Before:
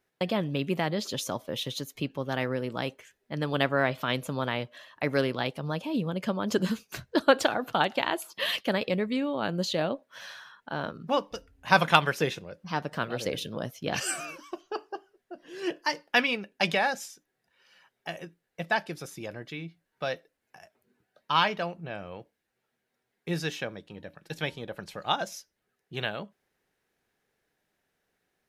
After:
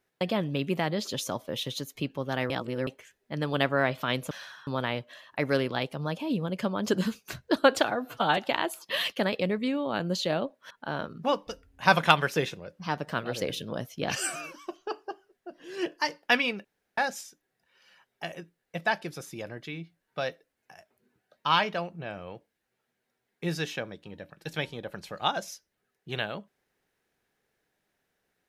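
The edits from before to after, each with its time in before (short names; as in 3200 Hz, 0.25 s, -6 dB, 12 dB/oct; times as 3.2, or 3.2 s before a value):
2.5–2.87 reverse
7.55–7.86 stretch 1.5×
10.19–10.55 move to 4.31
16.49–16.82 room tone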